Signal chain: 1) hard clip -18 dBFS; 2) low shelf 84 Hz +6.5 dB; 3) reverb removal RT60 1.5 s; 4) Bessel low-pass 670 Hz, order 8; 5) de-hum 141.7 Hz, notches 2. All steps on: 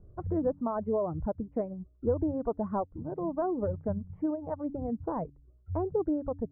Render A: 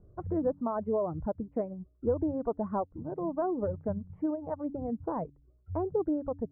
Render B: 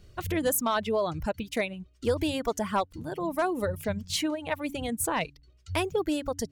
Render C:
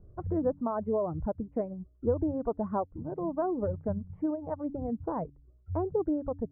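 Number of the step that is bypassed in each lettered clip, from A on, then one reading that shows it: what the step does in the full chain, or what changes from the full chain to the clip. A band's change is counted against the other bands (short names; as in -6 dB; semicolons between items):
2, 125 Hz band -2.5 dB; 4, 1 kHz band +5.5 dB; 1, distortion -24 dB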